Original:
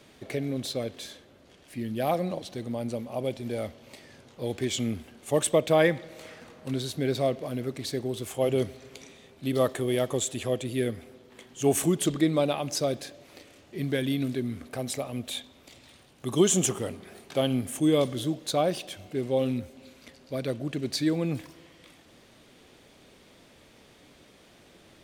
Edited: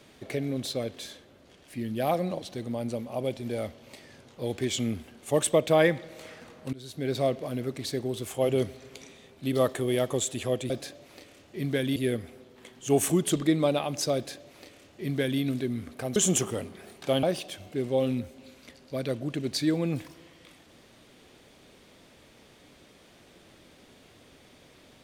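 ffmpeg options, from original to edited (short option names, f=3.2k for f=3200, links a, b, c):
-filter_complex "[0:a]asplit=6[a][b][c][d][e][f];[a]atrim=end=6.73,asetpts=PTS-STARTPTS,afade=t=out:st=6.726:d=0.004:c=hsin:silence=0.0891251[g];[b]atrim=start=6.73:end=10.702,asetpts=PTS-STARTPTS,afade=t=in:d=0.48:silence=0.0891251[h];[c]atrim=start=12.888:end=14.152[i];[d]atrim=start=10.698:end=14.902[j];[e]atrim=start=16.438:end=17.512[k];[f]atrim=start=18.618[l];[g][h]concat=n=2:v=0:a=1[m];[m][i]acrossfade=d=0.004:c1=hsin:c2=hsin[n];[n][j]acrossfade=d=0.004:c1=hsin:c2=hsin[o];[o][k]acrossfade=d=0.004:c1=hsin:c2=hsin[p];[p][l]acrossfade=d=0.004:c1=hsin:c2=hsin"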